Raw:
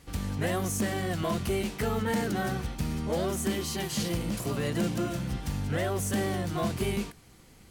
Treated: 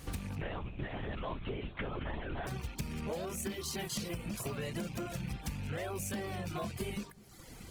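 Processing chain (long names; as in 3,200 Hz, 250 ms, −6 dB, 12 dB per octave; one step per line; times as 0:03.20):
loose part that buzzes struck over −33 dBFS, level −32 dBFS
reverb reduction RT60 0.8 s
dynamic equaliser 290 Hz, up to −6 dB, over −49 dBFS, Q 4.3
downward compressor 16 to 1, threshold −42 dBFS, peak gain reduction 17 dB
on a send: bucket-brigade delay 202 ms, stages 1,024, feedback 34%, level −19.5 dB
0:00.41–0:02.47: on the sum: linear-prediction vocoder at 8 kHz whisper
level +7 dB
Opus 20 kbit/s 48,000 Hz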